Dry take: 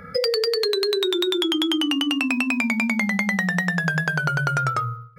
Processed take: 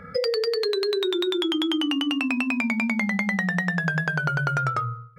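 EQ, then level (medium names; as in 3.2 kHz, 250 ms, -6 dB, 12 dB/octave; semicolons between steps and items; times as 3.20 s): treble shelf 5.1 kHz -9.5 dB; -1.5 dB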